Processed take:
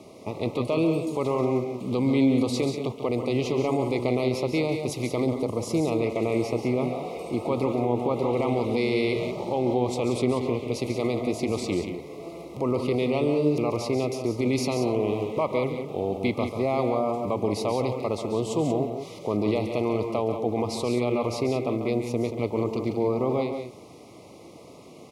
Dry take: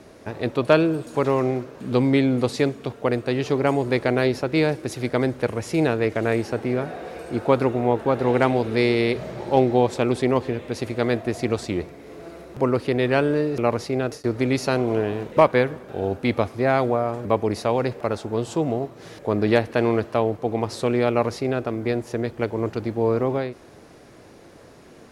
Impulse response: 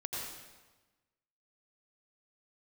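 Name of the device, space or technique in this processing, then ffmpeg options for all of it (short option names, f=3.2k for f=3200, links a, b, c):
PA system with an anti-feedback notch: -filter_complex "[0:a]asettb=1/sr,asplit=3[a][b][c];[a]atrim=end=5.204[d];[b]atrim=start=5.2:end=5.88,asetpts=PTS-STARTPTS,afade=t=in:d=0.004:c=qsin,afade=t=out:st=0.676:d=0.004:c=qsin,equalizer=f=2.5k:t=o:w=0.58:g=-9.5[e];[c]atrim=start=5.876[f];[d][e]acrossfade=d=0.004:c1=hsin:c2=qsin[g];[g][f]acrossfade=d=0.004:c1=qsin:c2=hsin,highpass=100,asuperstop=centerf=1600:order=12:qfactor=2.1,alimiter=limit=-16.5dB:level=0:latency=1:release=32,aecho=1:1:139.9|180.8:0.355|0.355"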